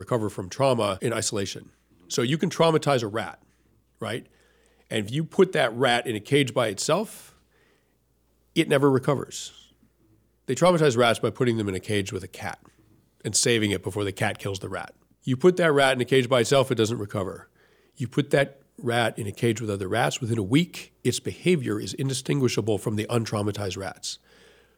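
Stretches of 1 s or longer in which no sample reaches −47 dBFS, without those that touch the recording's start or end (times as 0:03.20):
0:07.33–0:08.56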